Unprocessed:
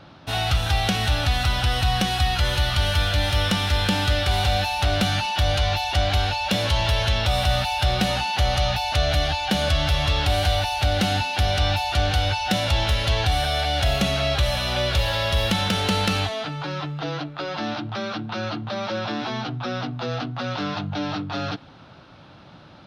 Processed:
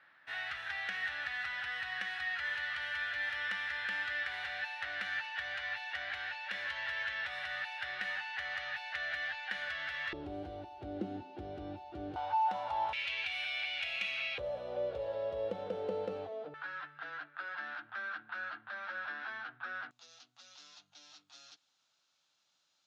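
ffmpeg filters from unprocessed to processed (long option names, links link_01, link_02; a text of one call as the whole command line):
ffmpeg -i in.wav -af "asetnsamples=nb_out_samples=441:pad=0,asendcmd='10.13 bandpass f 340;12.16 bandpass f 900;12.93 bandpass f 2400;14.38 bandpass f 490;16.54 bandpass f 1600;19.91 bandpass f 7100',bandpass=frequency=1800:width_type=q:width=7.1:csg=0" out.wav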